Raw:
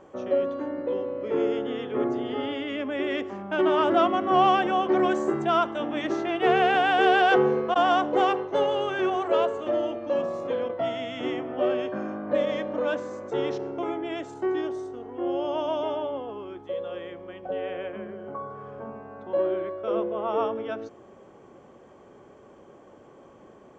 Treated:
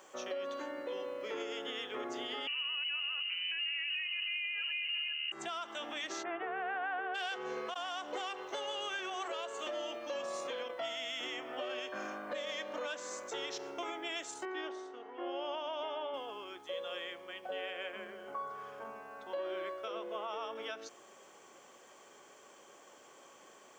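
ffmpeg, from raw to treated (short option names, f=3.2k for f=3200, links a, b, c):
-filter_complex "[0:a]asettb=1/sr,asplit=3[a][b][c];[a]atrim=end=2.474[d];[b]atrim=start=2.47:end=5.32,asetpts=PTS-STARTPTS,afade=t=in:d=0.004:c=qsin,afade=t=out:st=2.846:d=0.004:c=qsin,lowpass=f=2.7k:t=q:w=0.5098,lowpass=f=2.7k:t=q:w=0.6013,lowpass=f=2.7k:t=q:w=0.9,lowpass=f=2.7k:t=q:w=2.563,afreqshift=-3200[e];[c]atrim=start=5.316[f];[d][e]acrossfade=d=0.004:c1=hsin:c2=qsin[g];[g][f]acrossfade=d=0.004:c1=qsin:c2=hsin,asplit=3[h][i][j];[h]afade=t=out:st=6.22:d=0.02[k];[i]lowpass=f=1.7k:w=0.5412,lowpass=f=1.7k:w=1.3066,afade=t=in:st=6.22:d=0.02,afade=t=out:st=7.14:d=0.02[l];[j]afade=t=in:st=7.14:d=0.02[m];[k][l][m]amix=inputs=3:normalize=0,asettb=1/sr,asplit=3[n][o][p];[n]atrim=end=14.454[q];[o]atrim=start=14.45:end=16.14,asetpts=PTS-STARTPTS,afade=t=in:d=0.004:c=qsin,afade=t=out:st=1.686:d=0.004:c=qsin,highpass=200,lowpass=2.7k[r];[p]atrim=start=16.136[s];[q][r]acrossfade=d=0.004:c1=hsin:c2=qsin[t];[t][s]acrossfade=d=0.004:c1=qsin:c2=hsin,acompressor=threshold=-24dB:ratio=6,aderivative,alimiter=level_in=19.5dB:limit=-24dB:level=0:latency=1:release=185,volume=-19.5dB,volume=13.5dB"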